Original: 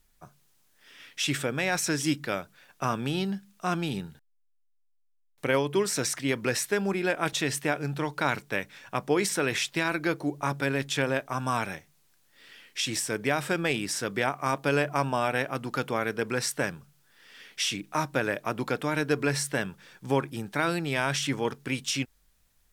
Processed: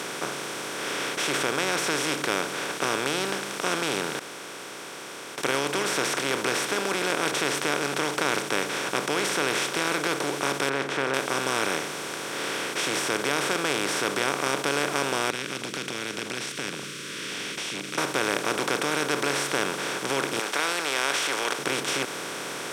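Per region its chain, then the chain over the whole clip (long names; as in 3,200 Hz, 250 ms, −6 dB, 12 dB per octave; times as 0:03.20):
0:10.69–0:11.14: Chebyshev low-pass filter 1,700 Hz, order 3 + de-essing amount 80%
0:15.30–0:17.98: Chebyshev band-stop filter 210–2,800 Hz, order 3 + downward compressor 2.5 to 1, threshold −51 dBFS + high-frequency loss of the air 110 metres
0:20.39–0:21.59: high-pass filter 730 Hz 24 dB per octave + parametric band 3,400 Hz +6.5 dB 2.5 octaves
whole clip: compressor on every frequency bin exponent 0.2; high-pass filter 96 Hz; low-shelf EQ 250 Hz −6 dB; level −8 dB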